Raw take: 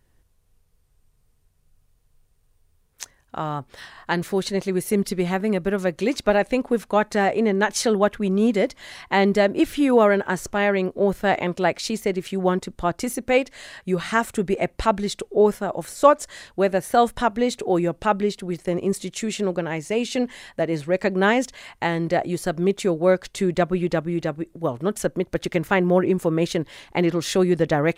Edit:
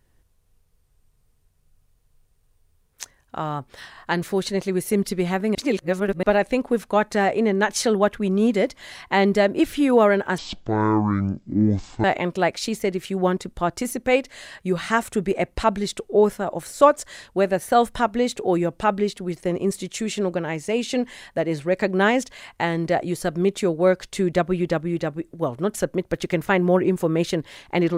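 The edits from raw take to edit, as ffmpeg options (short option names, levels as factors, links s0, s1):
-filter_complex "[0:a]asplit=5[s0][s1][s2][s3][s4];[s0]atrim=end=5.552[s5];[s1]atrim=start=5.548:end=6.232,asetpts=PTS-STARTPTS,areverse[s6];[s2]atrim=start=6.228:end=10.384[s7];[s3]atrim=start=10.38:end=11.26,asetpts=PTS-STARTPTS,asetrate=23373,aresample=44100[s8];[s4]atrim=start=11.256[s9];[s5][s6]acrossfade=d=0.004:c1=hsin:c2=hsin[s10];[s10][s7]acrossfade=d=0.004:c1=hsin:c2=hsin[s11];[s11][s8]acrossfade=d=0.004:c1=hsin:c2=hsin[s12];[s12][s9]acrossfade=d=0.004:c1=hsin:c2=hsin"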